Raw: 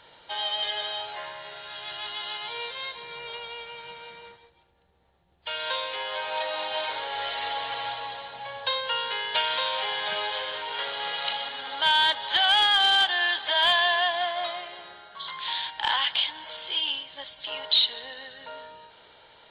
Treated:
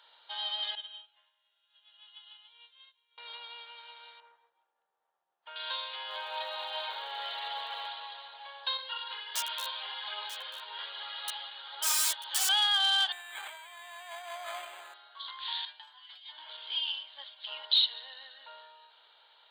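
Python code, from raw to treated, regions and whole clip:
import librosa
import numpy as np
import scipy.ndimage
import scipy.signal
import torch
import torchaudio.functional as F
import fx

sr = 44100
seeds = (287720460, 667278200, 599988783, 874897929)

y = fx.chain(x, sr, fx.ladder_lowpass(hz=3500.0, resonance_pct=60),
    fx.upward_expand(threshold_db=-47.0, expansion=2.5), at=(0.75, 3.18))
y = fx.chain(y, sr, fx.lowpass(hz=1500.0, slope=12),
    fx.low_shelf(hz=370.0, db=-5.0), at=(4.2, 5.56))
y = fx.peak_eq(y, sr, hz=370.0, db=5.0, octaves=2.3, at=(6.08, 7.86), fade=0.02)
y = fx.dmg_crackle(y, sr, seeds[0], per_s=250.0, level_db=-51.0, at=(6.08, 7.86), fade=0.02)
y = fx.chain(y, sr, fx.overflow_wrap(gain_db=17.0),
    fx.echo_single(ms=940, db=-14.0),
    fx.ensemble(), at=(8.77, 12.49))
y = fx.chain(y, sr, fx.cvsd(bps=64000),
    fx.over_compress(threshold_db=-33.0, ratio=-1.0),
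    fx.resample_linear(factor=8), at=(13.12, 14.94))
y = fx.chain(y, sr, fx.over_compress(threshold_db=-35.0, ratio=-1.0),
    fx.stiff_resonator(f0_hz=120.0, decay_s=0.31, stiffness=0.002), at=(15.65, 16.38))
y = scipy.signal.sosfilt(scipy.signal.butter(2, 1300.0, 'highpass', fs=sr, output='sos'), y)
y = fx.peak_eq(y, sr, hz=2100.0, db=-10.5, octaves=1.1)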